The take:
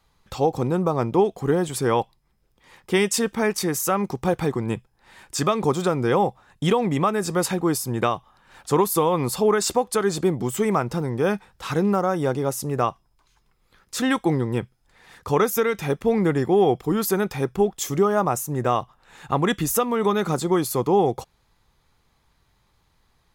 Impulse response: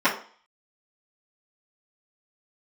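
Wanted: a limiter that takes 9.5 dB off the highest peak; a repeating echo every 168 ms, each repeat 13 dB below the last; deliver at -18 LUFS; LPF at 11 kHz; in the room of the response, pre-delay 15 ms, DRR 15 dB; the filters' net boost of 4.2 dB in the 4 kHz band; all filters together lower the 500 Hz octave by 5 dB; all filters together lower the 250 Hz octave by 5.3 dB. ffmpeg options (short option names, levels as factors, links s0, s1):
-filter_complex "[0:a]lowpass=11000,equalizer=f=250:t=o:g=-6.5,equalizer=f=500:t=o:g=-4,equalizer=f=4000:t=o:g=5.5,alimiter=limit=0.119:level=0:latency=1,aecho=1:1:168|336|504:0.224|0.0493|0.0108,asplit=2[s0][s1];[1:a]atrim=start_sample=2205,adelay=15[s2];[s1][s2]afir=irnorm=-1:irlink=0,volume=0.0224[s3];[s0][s3]amix=inputs=2:normalize=0,volume=3.35"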